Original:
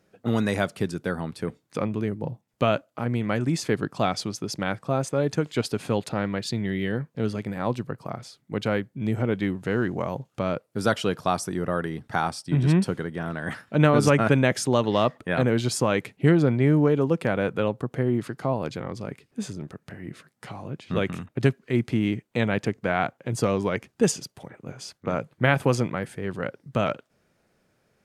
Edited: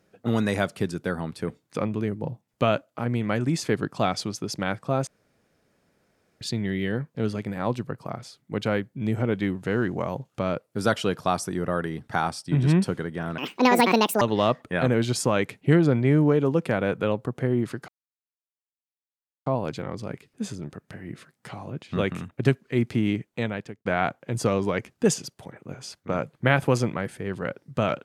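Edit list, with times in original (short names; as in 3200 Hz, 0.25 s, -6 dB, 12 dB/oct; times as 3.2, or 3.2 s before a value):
5.07–6.41 room tone
13.38–14.77 speed 167%
18.44 insert silence 1.58 s
22.18–22.83 fade out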